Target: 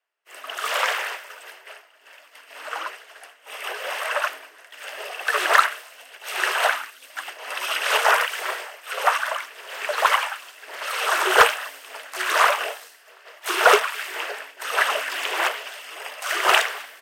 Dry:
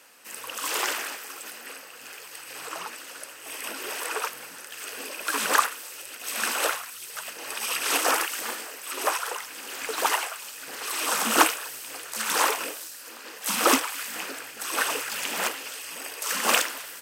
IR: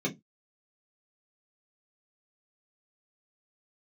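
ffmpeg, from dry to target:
-af "agate=range=-33dB:threshold=-34dB:ratio=3:detection=peak,bass=frequency=250:gain=-2,treble=frequency=4000:gain=-13,afreqshift=150,asoftclip=type=hard:threshold=-11.5dB,volume=7dB"

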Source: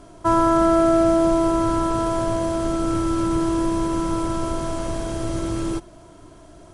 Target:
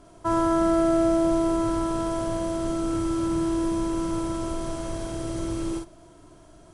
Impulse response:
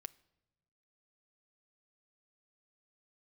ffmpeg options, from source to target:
-filter_complex "[0:a]asplit=2[link_01][link_02];[1:a]atrim=start_sample=2205,highshelf=frequency=5200:gain=7.5,adelay=48[link_03];[link_02][link_03]afir=irnorm=-1:irlink=0,volume=-0.5dB[link_04];[link_01][link_04]amix=inputs=2:normalize=0,volume=-6.5dB"

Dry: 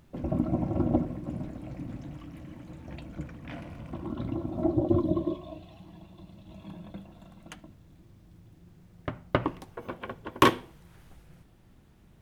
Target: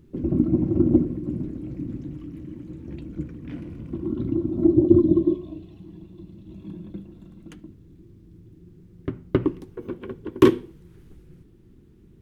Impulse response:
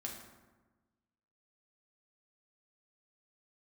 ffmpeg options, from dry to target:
-af "lowshelf=frequency=500:width_type=q:width=3:gain=9,volume=-4.5dB"

